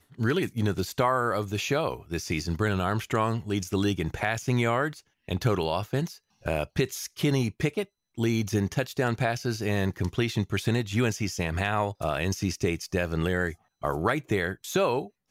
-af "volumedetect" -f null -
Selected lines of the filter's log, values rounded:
mean_volume: -27.8 dB
max_volume: -11.1 dB